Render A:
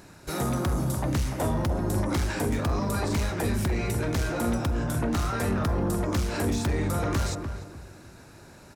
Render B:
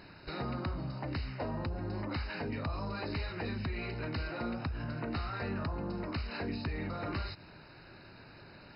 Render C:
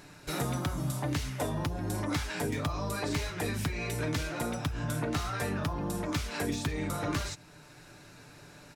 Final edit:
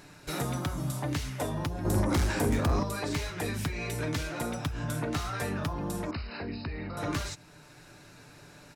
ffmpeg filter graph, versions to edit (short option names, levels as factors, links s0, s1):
-filter_complex "[2:a]asplit=3[s0][s1][s2];[s0]atrim=end=1.852[s3];[0:a]atrim=start=1.848:end=2.832[s4];[s1]atrim=start=2.828:end=6.112[s5];[1:a]atrim=start=6.108:end=6.972[s6];[s2]atrim=start=6.968[s7];[s3][s4]acrossfade=d=0.004:c1=hsin:c2=hsin[s8];[s8][s5]acrossfade=d=0.004:c1=hsin:c2=hsin[s9];[s9][s6]acrossfade=d=0.004:c1=hsin:c2=hsin[s10];[s10][s7]acrossfade=d=0.004:c1=hsin:c2=hsin"